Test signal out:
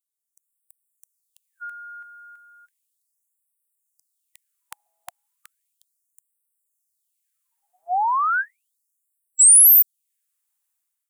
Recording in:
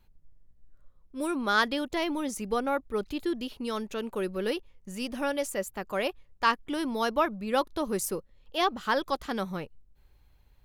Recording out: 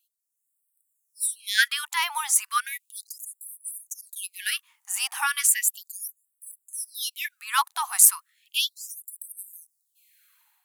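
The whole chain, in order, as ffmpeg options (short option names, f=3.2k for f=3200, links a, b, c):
-af "dynaudnorm=f=160:g=5:m=11dB,highshelf=f=6.6k:t=q:w=1.5:g=8,afftfilt=real='re*gte(b*sr/1024,700*pow(7900/700,0.5+0.5*sin(2*PI*0.35*pts/sr)))':imag='im*gte(b*sr/1024,700*pow(7900/700,0.5+0.5*sin(2*PI*0.35*pts/sr)))':win_size=1024:overlap=0.75"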